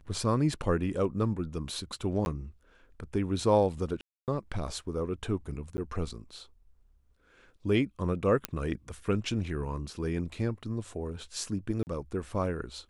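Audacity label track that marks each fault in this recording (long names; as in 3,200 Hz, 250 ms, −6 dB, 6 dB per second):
2.250000	2.260000	drop-out 11 ms
4.010000	4.280000	drop-out 268 ms
5.770000	5.780000	drop-out 10 ms
8.450000	8.450000	click −12 dBFS
11.830000	11.870000	drop-out 39 ms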